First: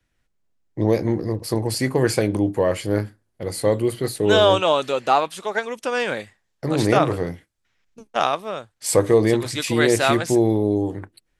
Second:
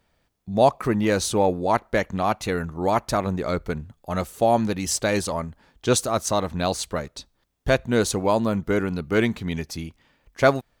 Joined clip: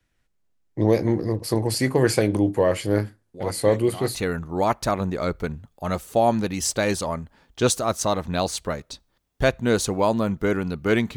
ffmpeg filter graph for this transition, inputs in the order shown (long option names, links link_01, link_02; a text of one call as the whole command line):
ffmpeg -i cue0.wav -i cue1.wav -filter_complex "[1:a]asplit=2[link_01][link_02];[0:a]apad=whole_dur=11.16,atrim=end=11.16,atrim=end=4.152[link_03];[link_02]atrim=start=2.408:end=9.42[link_04];[link_01]atrim=start=1.6:end=2.41,asetpts=PTS-STARTPTS,volume=-14dB,afade=type=in:duration=0.004:curve=hsin,afade=type=out:start_time=0.806:duration=0.004:curve=hsin,adelay=3340[link_05];[link_03][link_04]acrossfade=duration=0.004:curve1=hsin:curve2=hsin[link_06];[link_06][link_05]amix=inputs=2:normalize=0" out.wav